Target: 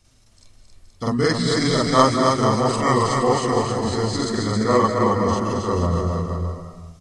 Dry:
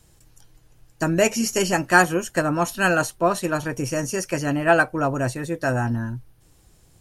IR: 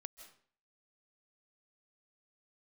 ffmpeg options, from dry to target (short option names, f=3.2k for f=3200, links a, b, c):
-filter_complex "[0:a]asetrate=32097,aresample=44100,atempo=1.37395,aecho=1:1:270|472.5|624.4|738.3|823.7:0.631|0.398|0.251|0.158|0.1,asplit=2[a][b];[1:a]atrim=start_sample=2205,adelay=46[c];[b][c]afir=irnorm=-1:irlink=0,volume=9dB[d];[a][d]amix=inputs=2:normalize=0,volume=-4.5dB"